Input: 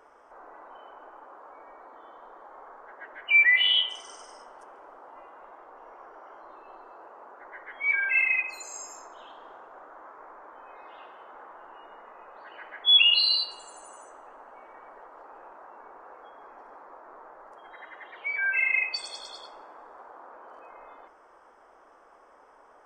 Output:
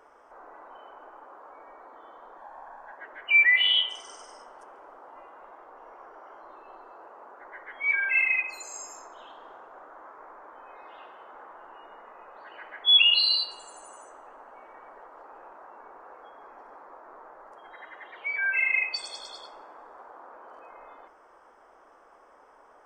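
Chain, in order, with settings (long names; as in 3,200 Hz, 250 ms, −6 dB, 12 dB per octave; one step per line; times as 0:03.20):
0:02.37–0:02.98: comb filter 1.2 ms, depth 65%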